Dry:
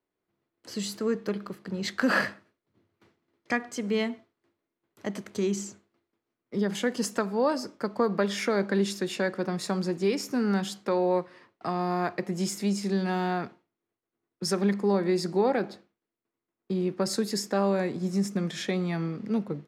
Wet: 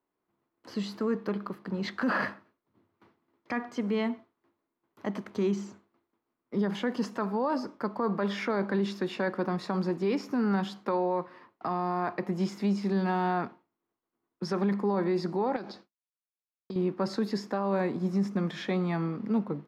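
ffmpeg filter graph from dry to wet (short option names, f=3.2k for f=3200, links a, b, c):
-filter_complex "[0:a]asettb=1/sr,asplit=3[a][b][c];[a]atrim=end=15.564[d];[b]atrim=start=15.56:end=16.76,asetpts=PTS-STARTPTS,afade=t=in:d=0.004:c=qsin,afade=t=out:st=1.196:d=0.004:c=qsin,agate=range=-33dB:threshold=-58dB:ratio=3:release=100:detection=peak,equalizer=f=5.3k:w=1:g=15,acompressor=threshold=-34dB:ratio=12:attack=3.2:release=140:knee=1:detection=peak[e];[c]atrim=start=16.756[f];[d][e]acrossfade=d=0.004:c1=hsin:c2=qsin[g];[g][f]acrossfade=d=0.004:c1=qsin:c2=hsin,acrossover=split=6000[h][i];[i]acompressor=threshold=-53dB:ratio=4:attack=1:release=60[j];[h][j]amix=inputs=2:normalize=0,equalizer=f=250:t=o:w=1:g=5,equalizer=f=1k:t=o:w=1:g=9,equalizer=f=8k:t=o:w=1:g=-9,alimiter=limit=-17dB:level=0:latency=1:release=17,volume=-3dB"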